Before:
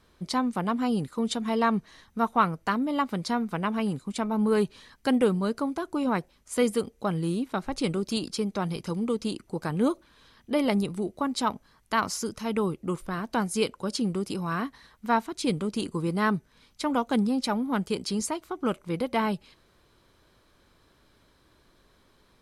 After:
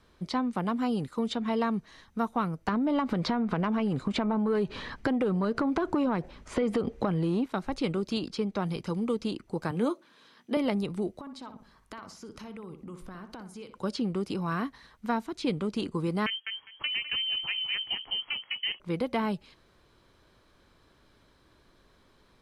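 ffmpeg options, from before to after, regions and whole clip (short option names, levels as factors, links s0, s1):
-filter_complex "[0:a]asettb=1/sr,asplit=3[s0][s1][s2];[s0]atrim=end=2.684[s3];[s1]atrim=start=2.68:end=7.46,asetpts=PTS-STARTPTS,afade=t=in:d=0.004:c=qsin,afade=t=out:st=4.776:d=0.004:c=qsin,aemphasis=mode=reproduction:type=75fm,acompressor=threshold=0.02:ratio=6:attack=3.2:release=140:knee=1:detection=peak,aeval=exprs='0.168*sin(PI/2*3.55*val(0)/0.168)':c=same[s4];[s2]atrim=start=7.456[s5];[s3][s4]acrossfade=d=0.004:c1=hsin:c2=qsin[s6];[s6][s5]acrossfade=d=0.004:c1=qsin:c2=hsin,asettb=1/sr,asplit=3[s7][s8][s9];[s7]atrim=end=9.714[s10];[s8]atrim=start=9.71:end=10.57,asetpts=PTS-STARTPTS,afade=t=in:d=0.004:c=qsin,afade=t=out:st=0.856:d=0.004:c=qsin,highpass=f=170:w=0.5412,highpass=f=170:w=1.3066,asplit=2[s11][s12];[s12]adelay=17,volume=0.224[s13];[s11][s13]amix=inputs=2:normalize=0,atrim=end_sample=37926[s14];[s9]atrim=start=10.566[s15];[s10][s14]acrossfade=d=0.004:c1=hsin:c2=qsin[s16];[s16][s15]acrossfade=d=0.004:c1=qsin:c2=hsin,asettb=1/sr,asplit=3[s17][s18][s19];[s17]atrim=end=11.204[s20];[s18]atrim=start=11.2:end=13.78,asetpts=PTS-STARTPTS,afade=t=in:d=0.004:c=qsin,afade=t=out:st=2.576:d=0.004:c=qsin,acompressor=threshold=0.01:ratio=8:attack=3.2:release=140:knee=1:detection=peak,asplit=2[s21][s22];[s22]adelay=61,lowpass=f=2200:p=1,volume=0.355,asplit=2[s23][s24];[s24]adelay=61,lowpass=f=2200:p=1,volume=0.4,asplit=2[s25][s26];[s26]adelay=61,lowpass=f=2200:p=1,volume=0.4,asplit=2[s27][s28];[s28]adelay=61,lowpass=f=2200:p=1,volume=0.4[s29];[s21][s23][s25][s27][s29]amix=inputs=5:normalize=0,atrim=end_sample=113778[s30];[s19]atrim=start=13.776[s31];[s20][s30]acrossfade=d=0.004:c1=hsin:c2=qsin[s32];[s32][s31]acrossfade=d=0.004:c1=qsin:c2=hsin,asettb=1/sr,asplit=3[s33][s34][s35];[s33]atrim=end=16.264[s36];[s34]atrim=start=16.26:end=18.8,asetpts=PTS-STARTPTS,afade=t=in:d=0.004:c=qsin,afade=t=out:st=2.536:d=0.004:c=qsin,lowpass=f=2800:t=q:w=0.5098,lowpass=f=2800:t=q:w=0.6013,lowpass=f=2800:t=q:w=0.9,lowpass=f=2800:t=q:w=2.563,afreqshift=-3300,aecho=1:1:203|406:0.335|0.0502,atrim=end_sample=112014[s37];[s35]atrim=start=18.796[s38];[s36][s37]acrossfade=d=0.004:c1=hsin:c2=qsin[s39];[s39][s38]acrossfade=d=0.004:c1=qsin:c2=hsin,highshelf=f=9400:g=-9.5,acrossover=split=420|4800[s40][s41][s42];[s40]acompressor=threshold=0.0398:ratio=4[s43];[s41]acompressor=threshold=0.0355:ratio=4[s44];[s42]acompressor=threshold=0.00158:ratio=4[s45];[s43][s44][s45]amix=inputs=3:normalize=0"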